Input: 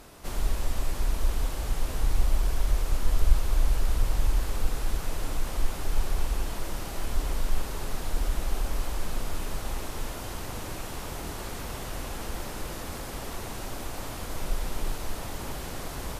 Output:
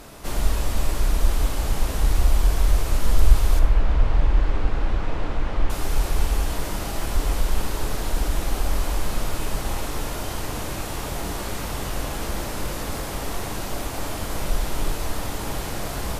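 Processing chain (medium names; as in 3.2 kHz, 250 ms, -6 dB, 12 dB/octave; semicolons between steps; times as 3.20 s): 3.59–5.70 s: low-pass 2.6 kHz 12 dB/octave; plate-style reverb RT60 0.73 s, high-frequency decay 0.8×, DRR 6.5 dB; trim +6 dB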